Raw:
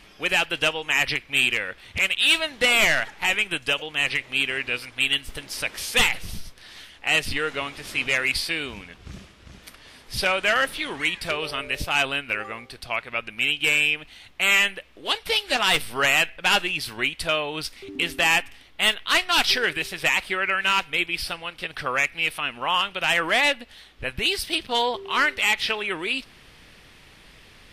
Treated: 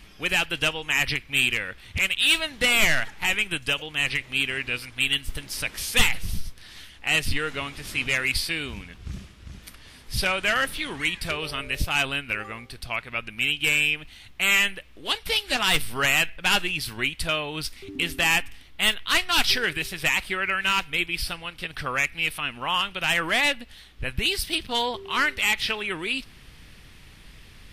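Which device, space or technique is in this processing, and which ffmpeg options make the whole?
smiley-face EQ: -af "lowshelf=frequency=190:gain=9,equalizer=frequency=570:width_type=o:width=1.5:gain=-4,highshelf=frequency=10000:gain=6.5,volume=-1.5dB"

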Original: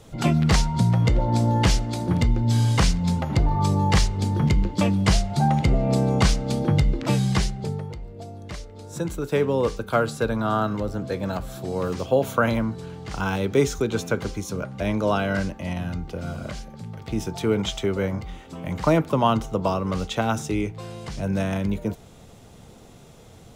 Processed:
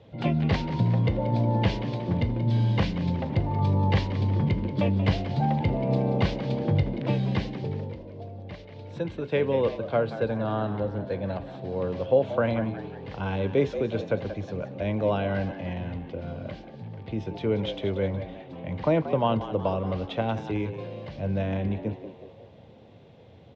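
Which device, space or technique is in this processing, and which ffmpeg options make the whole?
frequency-shifting delay pedal into a guitar cabinet: -filter_complex "[0:a]asplit=6[link_01][link_02][link_03][link_04][link_05][link_06];[link_02]adelay=182,afreqshift=88,volume=-12dB[link_07];[link_03]adelay=364,afreqshift=176,volume=-18.4dB[link_08];[link_04]adelay=546,afreqshift=264,volume=-24.8dB[link_09];[link_05]adelay=728,afreqshift=352,volume=-31.1dB[link_10];[link_06]adelay=910,afreqshift=440,volume=-37.5dB[link_11];[link_01][link_07][link_08][link_09][link_10][link_11]amix=inputs=6:normalize=0,highpass=83,equalizer=frequency=99:width_type=q:width=4:gain=7,equalizer=frequency=540:width_type=q:width=4:gain=6,equalizer=frequency=1300:width_type=q:width=4:gain=-9,lowpass=frequency=3700:width=0.5412,lowpass=frequency=3700:width=1.3066,asettb=1/sr,asplit=3[link_12][link_13][link_14];[link_12]atrim=end=8.594[link_15];[link_13]atrim=start=8.59:end=9.77,asetpts=PTS-STARTPTS,afade=type=in:duration=0.004:curve=qsin,afade=type=out:start_time=1.176:duration=0.004:curve=qsin,equalizer=frequency=2700:width=0.54:gain=5[link_16];[link_14]atrim=start=9.766[link_17];[link_15][link_16]acrossfade=duration=0.004:curve1=hsin:curve2=qsin[link_18];[link_18][link_17]acrossfade=duration=0.004:curve1=qsin:curve2=hsin,volume=-5dB"

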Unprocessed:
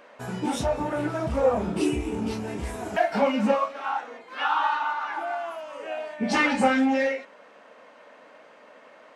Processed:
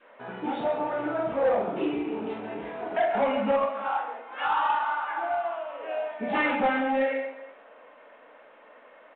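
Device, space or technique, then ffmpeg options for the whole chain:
telephone: -af "adynamicequalizer=threshold=0.0141:dfrequency=690:dqfactor=1.2:tfrequency=690:tqfactor=1.2:attack=5:release=100:ratio=0.375:range=2:mode=boostabove:tftype=bell,highpass=260,lowpass=3100,aecho=1:1:47|53|136|143|193|365:0.501|0.158|0.316|0.158|0.133|0.112,asoftclip=type=tanh:threshold=-14dB,volume=-3dB" -ar 8000 -c:a pcm_mulaw

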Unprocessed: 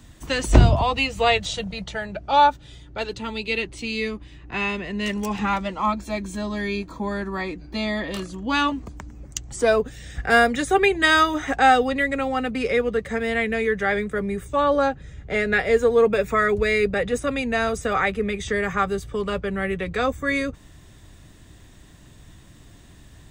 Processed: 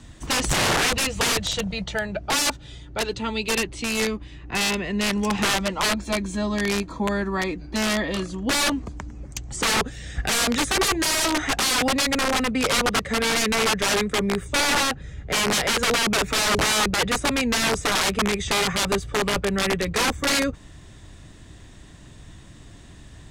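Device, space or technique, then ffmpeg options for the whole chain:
overflowing digital effects unit: -af "aeval=exprs='(mod(8.41*val(0)+1,2)-1)/8.41':channel_layout=same,lowpass=9900,volume=3dB"

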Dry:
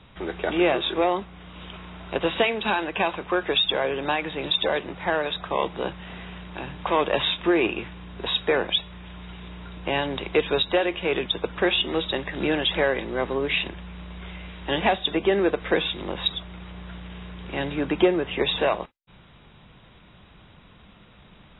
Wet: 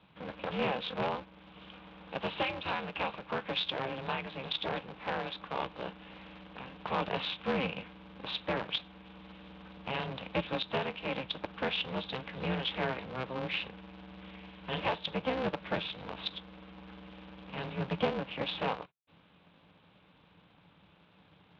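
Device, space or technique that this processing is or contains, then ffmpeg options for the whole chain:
ring modulator pedal into a guitar cabinet: -af "aeval=exprs='val(0)*sgn(sin(2*PI*130*n/s))':channel_layout=same,highpass=110,equalizer=frequency=170:width_type=q:width=4:gain=6,equalizer=frequency=240:width_type=q:width=4:gain=-8,equalizer=frequency=360:width_type=q:width=4:gain=-9,equalizer=frequency=670:width_type=q:width=4:gain=-4,equalizer=frequency=1300:width_type=q:width=4:gain=-3,equalizer=frequency=1900:width_type=q:width=4:gain=-6,lowpass=frequency=3500:width=0.5412,lowpass=frequency=3500:width=1.3066,volume=-8dB"

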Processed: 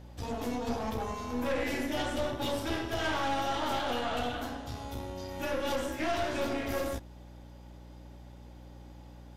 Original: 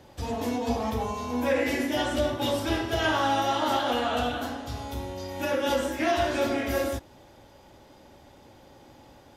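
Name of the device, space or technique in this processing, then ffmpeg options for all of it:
valve amplifier with mains hum: -af "aeval=exprs='(tanh(15.8*val(0)+0.6)-tanh(0.6))/15.8':channel_layout=same,aeval=exprs='val(0)+0.00501*(sin(2*PI*60*n/s)+sin(2*PI*2*60*n/s)/2+sin(2*PI*3*60*n/s)/3+sin(2*PI*4*60*n/s)/4+sin(2*PI*5*60*n/s)/5)':channel_layout=same,volume=-2dB"

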